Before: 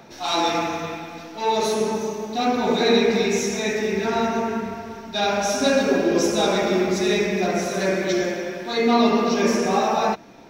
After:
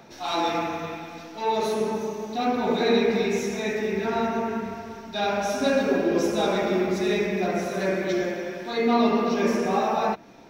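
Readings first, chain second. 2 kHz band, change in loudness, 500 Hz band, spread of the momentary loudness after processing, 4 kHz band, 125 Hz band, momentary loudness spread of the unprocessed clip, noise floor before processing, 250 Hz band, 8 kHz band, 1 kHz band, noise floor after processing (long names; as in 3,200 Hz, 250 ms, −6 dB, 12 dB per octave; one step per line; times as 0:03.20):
−4.0 dB, −3.5 dB, −3.0 dB, 9 LU, −7.0 dB, −3.0 dB, 9 LU, −40 dBFS, −3.0 dB, −9.5 dB, −3.0 dB, −43 dBFS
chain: dynamic equaliser 6,400 Hz, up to −7 dB, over −44 dBFS, Q 0.79
level −3 dB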